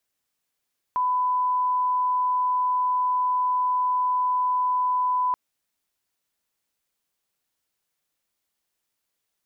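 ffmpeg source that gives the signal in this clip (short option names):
-f lavfi -i "sine=f=1000:d=4.38:r=44100,volume=-1.94dB"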